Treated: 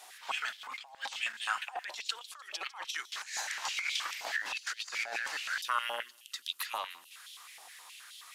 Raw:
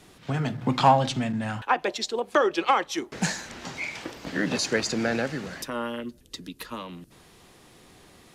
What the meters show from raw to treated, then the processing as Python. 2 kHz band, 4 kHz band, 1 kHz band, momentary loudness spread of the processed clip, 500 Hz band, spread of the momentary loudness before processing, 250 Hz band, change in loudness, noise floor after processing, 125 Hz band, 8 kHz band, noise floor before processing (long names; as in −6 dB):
−3.5 dB, −3.0 dB, −13.0 dB, 16 LU, −22.0 dB, 16 LU, below −35 dB, −9.5 dB, −57 dBFS, below −40 dB, −5.5 dB, −55 dBFS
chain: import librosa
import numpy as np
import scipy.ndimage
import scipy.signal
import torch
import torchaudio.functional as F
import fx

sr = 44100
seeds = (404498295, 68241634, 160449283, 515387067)

y = fx.tilt_eq(x, sr, slope=3.0)
y = fx.over_compress(y, sr, threshold_db=-31.0, ratio=-0.5)
y = fx.dmg_crackle(y, sr, seeds[0], per_s=37.0, level_db=-46.0)
y = fx.echo_wet_highpass(y, sr, ms=151, feedback_pct=58, hz=4300.0, wet_db=-16)
y = fx.filter_held_highpass(y, sr, hz=9.5, low_hz=760.0, high_hz=3300.0)
y = y * librosa.db_to_amplitude(-8.5)